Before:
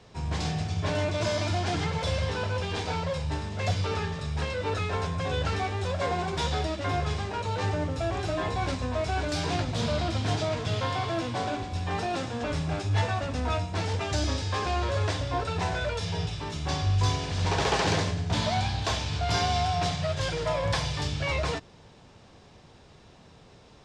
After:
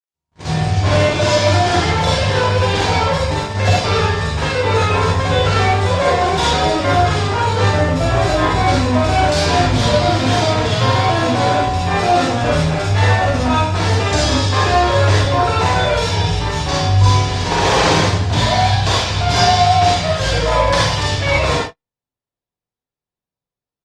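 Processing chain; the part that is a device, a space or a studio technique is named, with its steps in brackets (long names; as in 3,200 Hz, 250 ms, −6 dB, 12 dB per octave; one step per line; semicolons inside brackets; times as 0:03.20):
speakerphone in a meeting room (convolution reverb RT60 0.45 s, pre-delay 40 ms, DRR −4 dB; far-end echo of a speakerphone 170 ms, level −16 dB; automatic gain control gain up to 11.5 dB; noise gate −21 dBFS, range −55 dB; Opus 32 kbit/s 48,000 Hz)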